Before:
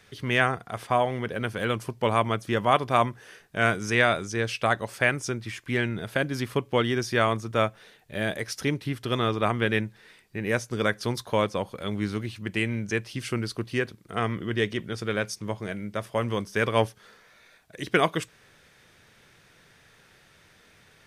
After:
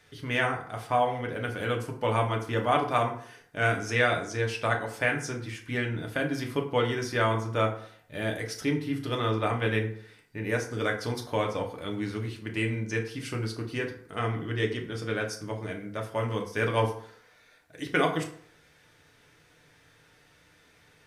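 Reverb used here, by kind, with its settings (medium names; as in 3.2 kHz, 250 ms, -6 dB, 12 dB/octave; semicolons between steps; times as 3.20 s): FDN reverb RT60 0.57 s, low-frequency decay 0.95×, high-frequency decay 0.6×, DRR 0.5 dB; trim -5.5 dB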